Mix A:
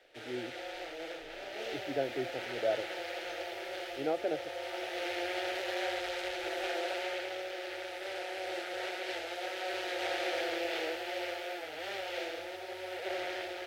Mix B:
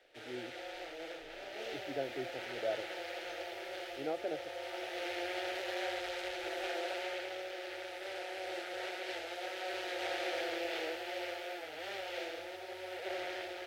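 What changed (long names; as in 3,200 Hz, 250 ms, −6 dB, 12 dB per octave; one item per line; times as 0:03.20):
speech −5.0 dB
background −3.0 dB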